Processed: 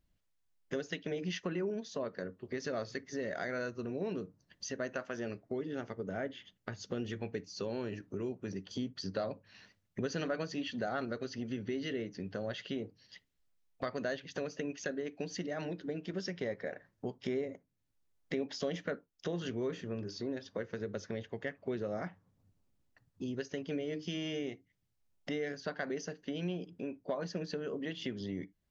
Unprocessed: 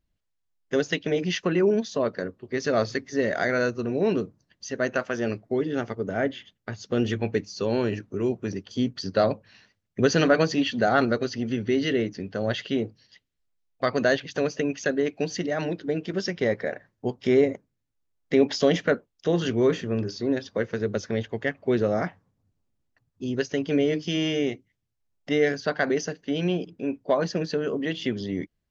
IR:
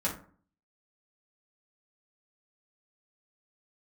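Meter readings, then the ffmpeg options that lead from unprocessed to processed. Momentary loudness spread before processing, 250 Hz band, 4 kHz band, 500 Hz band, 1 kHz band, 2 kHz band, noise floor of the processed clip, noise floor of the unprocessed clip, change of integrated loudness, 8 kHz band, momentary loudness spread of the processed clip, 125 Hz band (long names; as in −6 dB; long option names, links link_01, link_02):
9 LU, −13.0 dB, −11.5 dB, −13.5 dB, −14.0 dB, −13.0 dB, −78 dBFS, −78 dBFS, −13.0 dB, can't be measured, 6 LU, −12.0 dB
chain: -filter_complex "[0:a]acompressor=threshold=-42dB:ratio=2.5,asplit=2[link_01][link_02];[1:a]atrim=start_sample=2205,atrim=end_sample=3528[link_03];[link_02][link_03]afir=irnorm=-1:irlink=0,volume=-22dB[link_04];[link_01][link_04]amix=inputs=2:normalize=0"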